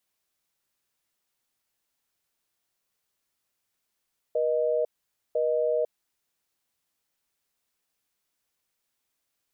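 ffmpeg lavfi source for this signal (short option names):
-f lavfi -i "aevalsrc='0.0562*(sin(2*PI*480*t)+sin(2*PI*620*t))*clip(min(mod(t,1),0.5-mod(t,1))/0.005,0,1)':d=1.86:s=44100"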